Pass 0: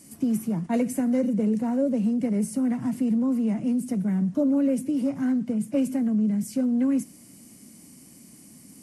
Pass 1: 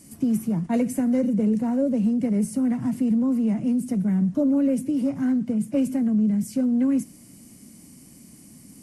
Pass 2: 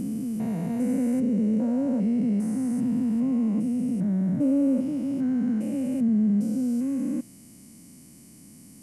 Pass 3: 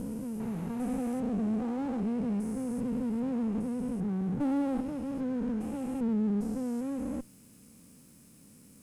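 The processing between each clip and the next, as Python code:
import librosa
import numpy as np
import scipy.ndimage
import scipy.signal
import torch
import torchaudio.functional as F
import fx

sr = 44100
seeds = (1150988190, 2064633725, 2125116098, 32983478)

y1 = fx.low_shelf(x, sr, hz=120.0, db=9.5)
y2 = fx.spec_steps(y1, sr, hold_ms=400)
y3 = fx.lower_of_two(y2, sr, delay_ms=0.76)
y3 = F.gain(torch.from_numpy(y3), -6.0).numpy()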